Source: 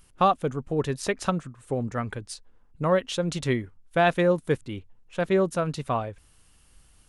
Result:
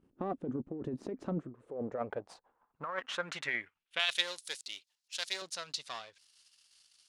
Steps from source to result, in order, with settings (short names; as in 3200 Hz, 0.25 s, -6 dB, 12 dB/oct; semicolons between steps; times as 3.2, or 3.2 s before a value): half-wave gain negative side -7 dB; in parallel at -2.5 dB: limiter -19 dBFS, peak gain reduction 11 dB; on the sum: dynamic EQ 7300 Hz, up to +3 dB, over -47 dBFS, Q 1.2; band-pass sweep 290 Hz -> 4600 Hz, 1.2–4.46; negative-ratio compressor -35 dBFS, ratio -1; 3.99–5.42 RIAA curve recording